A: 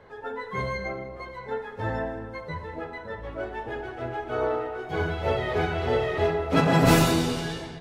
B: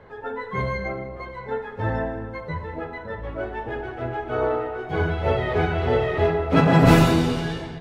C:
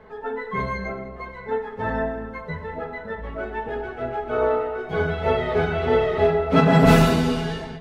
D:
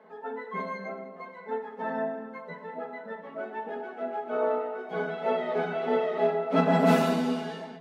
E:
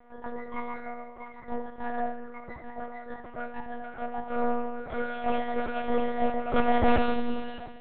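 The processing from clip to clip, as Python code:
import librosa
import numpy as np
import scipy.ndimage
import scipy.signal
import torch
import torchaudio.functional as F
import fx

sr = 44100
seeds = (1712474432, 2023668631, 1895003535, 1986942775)

y1 = fx.bass_treble(x, sr, bass_db=3, treble_db=-8)
y1 = y1 * librosa.db_to_amplitude(3.0)
y2 = y1 + 0.62 * np.pad(y1, (int(4.6 * sr / 1000.0), 0))[:len(y1)]
y2 = fx.end_taper(y2, sr, db_per_s=170.0)
y2 = y2 * librosa.db_to_amplitude(-1.0)
y3 = scipy.signal.sosfilt(scipy.signal.cheby1(6, 6, 170.0, 'highpass', fs=sr, output='sos'), y2)
y3 = y3 * librosa.db_to_amplitude(-3.5)
y4 = y3 + 10.0 ** (-11.5 / 20.0) * np.pad(y3, (int(73 * sr / 1000.0), 0))[:len(y3)]
y4 = fx.lpc_monotone(y4, sr, seeds[0], pitch_hz=240.0, order=8)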